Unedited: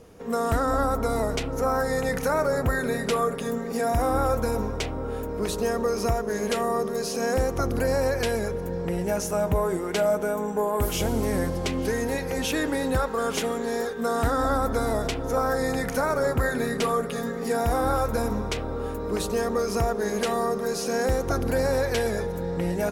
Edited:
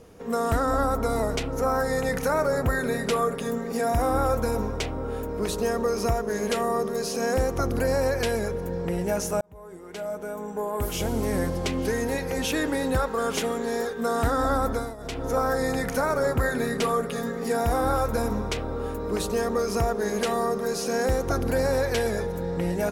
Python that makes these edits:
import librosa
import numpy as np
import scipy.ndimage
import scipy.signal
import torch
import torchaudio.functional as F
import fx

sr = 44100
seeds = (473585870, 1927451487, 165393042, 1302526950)

y = fx.edit(x, sr, fx.fade_in_span(start_s=9.41, length_s=2.04),
    fx.fade_down_up(start_s=14.69, length_s=0.55, db=-18.0, fade_s=0.27), tone=tone)